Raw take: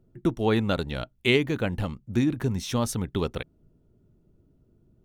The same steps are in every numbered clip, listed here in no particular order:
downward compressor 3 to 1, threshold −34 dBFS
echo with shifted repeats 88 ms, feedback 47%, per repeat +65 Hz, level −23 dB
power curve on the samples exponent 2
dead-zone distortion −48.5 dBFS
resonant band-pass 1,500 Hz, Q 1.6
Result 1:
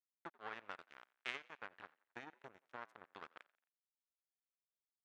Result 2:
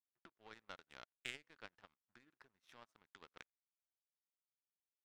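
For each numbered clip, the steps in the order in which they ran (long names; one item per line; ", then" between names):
power curve on the samples, then downward compressor, then dead-zone distortion, then resonant band-pass, then echo with shifted repeats
echo with shifted repeats, then dead-zone distortion, then downward compressor, then resonant band-pass, then power curve on the samples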